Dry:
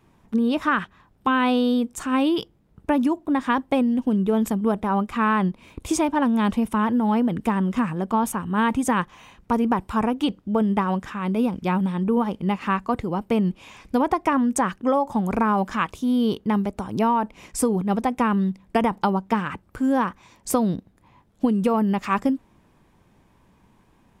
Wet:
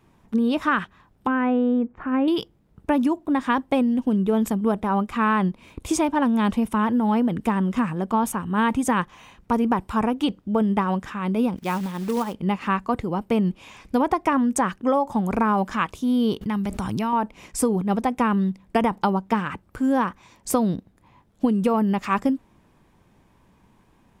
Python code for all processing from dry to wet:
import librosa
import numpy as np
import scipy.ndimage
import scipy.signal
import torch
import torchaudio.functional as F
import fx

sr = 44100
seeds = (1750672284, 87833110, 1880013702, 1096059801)

y = fx.chain(x, sr, fx.cheby2_lowpass(hz=9800.0, order=4, stop_db=80),
    fx.dynamic_eq(hz=1100.0, q=1.7, threshold_db=-35.0, ratio=4.0, max_db=-6), at=(1.27, 2.28))
y = fx.chain(y, sr, fx.low_shelf(hz=320.0, db=-7.0),
    fx.quant_float(bits=2), at=(11.56, 12.34))
y = fx.chain(y, sr, fx.peak_eq(hz=510.0, db=-9.5, octaves=2.1),
    fx.env_flatten(amount_pct=70), at=(16.41, 17.13))